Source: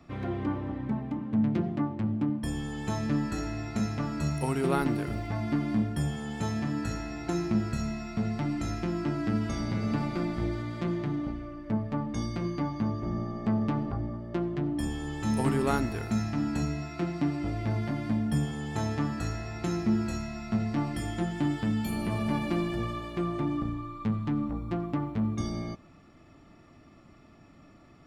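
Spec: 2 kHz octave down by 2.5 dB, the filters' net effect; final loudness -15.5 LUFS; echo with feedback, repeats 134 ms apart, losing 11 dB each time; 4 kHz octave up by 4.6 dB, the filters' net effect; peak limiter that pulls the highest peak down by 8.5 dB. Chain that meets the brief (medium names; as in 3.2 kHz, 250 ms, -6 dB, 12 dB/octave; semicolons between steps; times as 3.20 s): peaking EQ 2 kHz -5 dB; peaking EQ 4 kHz +7.5 dB; peak limiter -22 dBFS; feedback delay 134 ms, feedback 28%, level -11 dB; trim +17 dB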